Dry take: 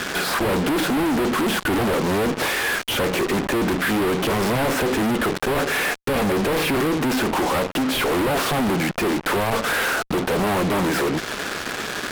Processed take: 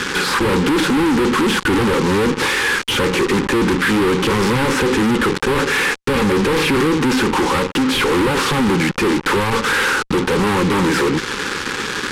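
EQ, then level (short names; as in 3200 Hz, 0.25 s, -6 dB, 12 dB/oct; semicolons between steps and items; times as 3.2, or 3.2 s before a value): Butterworth band-stop 660 Hz, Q 2.5; LPF 9200 Hz 12 dB/oct; +5.5 dB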